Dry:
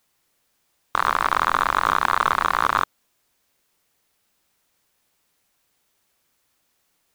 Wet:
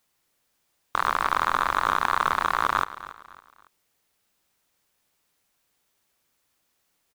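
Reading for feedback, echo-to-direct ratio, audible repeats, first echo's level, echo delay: 37%, −15.5 dB, 3, −16.0 dB, 278 ms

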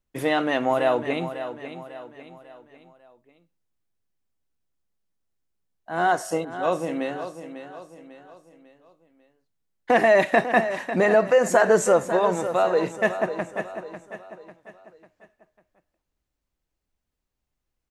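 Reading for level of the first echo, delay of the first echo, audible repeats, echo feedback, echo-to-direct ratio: −11.0 dB, 547 ms, 4, 43%, −10.0 dB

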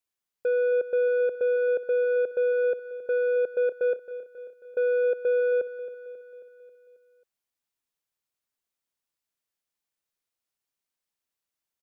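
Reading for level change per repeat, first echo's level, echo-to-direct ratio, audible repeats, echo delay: −5.0 dB, −14.0 dB, −12.5 dB, 5, 270 ms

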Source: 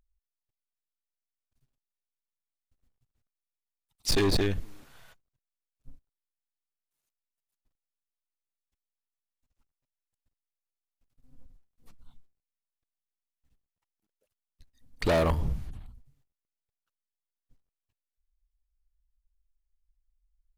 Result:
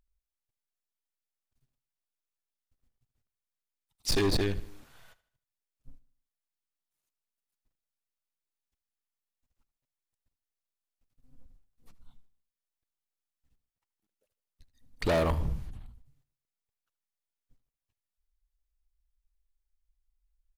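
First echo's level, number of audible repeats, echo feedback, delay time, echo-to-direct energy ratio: −18.0 dB, 3, 44%, 77 ms, −17.0 dB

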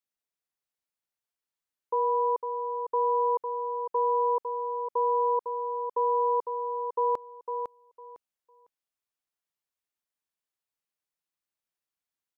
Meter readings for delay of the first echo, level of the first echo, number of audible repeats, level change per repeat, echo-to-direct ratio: 504 ms, −6.5 dB, 3, −14.0 dB, −6.5 dB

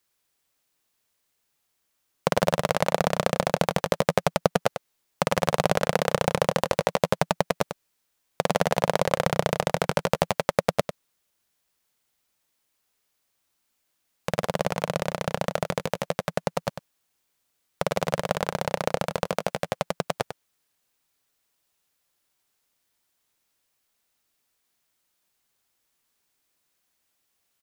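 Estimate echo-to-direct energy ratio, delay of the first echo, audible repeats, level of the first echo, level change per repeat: −9.5 dB, 97 ms, 1, −9.5 dB, repeats not evenly spaced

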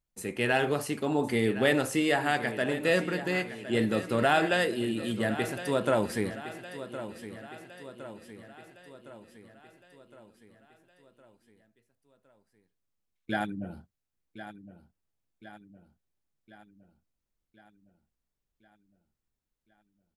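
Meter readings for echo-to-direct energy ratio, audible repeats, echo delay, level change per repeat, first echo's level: −11.5 dB, 5, 1,062 ms, −5.0 dB, −13.0 dB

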